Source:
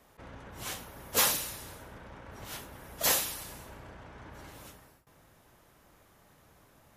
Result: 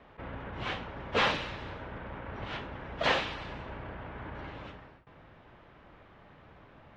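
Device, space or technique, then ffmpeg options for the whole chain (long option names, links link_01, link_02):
synthesiser wavefolder: -af "aeval=exprs='0.0944*(abs(mod(val(0)/0.0944+3,4)-2)-1)':channel_layout=same,lowpass=frequency=3200:width=0.5412,lowpass=frequency=3200:width=1.3066,volume=6.5dB"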